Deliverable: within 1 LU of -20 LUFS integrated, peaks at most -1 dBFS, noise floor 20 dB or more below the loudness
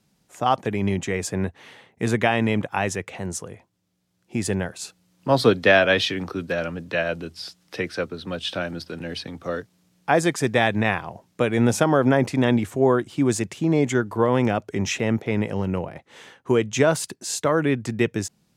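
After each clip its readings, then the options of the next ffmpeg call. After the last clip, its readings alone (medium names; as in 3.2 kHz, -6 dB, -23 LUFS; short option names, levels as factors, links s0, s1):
loudness -23.0 LUFS; peak level -3.0 dBFS; loudness target -20.0 LUFS
-> -af "volume=1.41,alimiter=limit=0.891:level=0:latency=1"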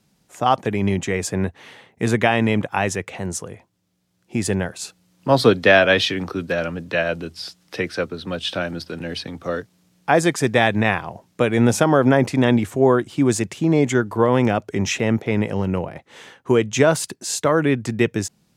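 loudness -20.0 LUFS; peak level -1.0 dBFS; noise floor -64 dBFS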